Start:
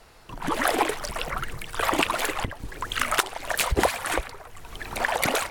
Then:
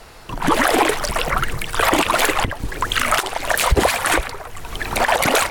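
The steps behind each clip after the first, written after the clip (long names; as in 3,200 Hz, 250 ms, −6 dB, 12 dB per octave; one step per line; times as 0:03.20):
boost into a limiter +14 dB
level −3.5 dB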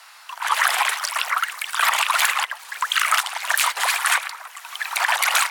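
inverse Chebyshev high-pass filter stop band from 280 Hz, stop band 60 dB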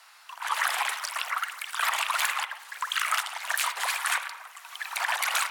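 convolution reverb RT60 0.85 s, pre-delay 48 ms, DRR 11 dB
level −8 dB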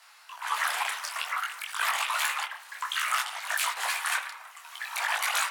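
micro pitch shift up and down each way 20 cents
level +2.5 dB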